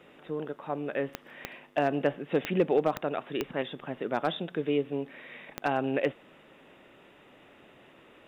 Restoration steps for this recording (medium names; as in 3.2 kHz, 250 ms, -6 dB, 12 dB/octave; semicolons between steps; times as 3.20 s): clip repair -15 dBFS; de-click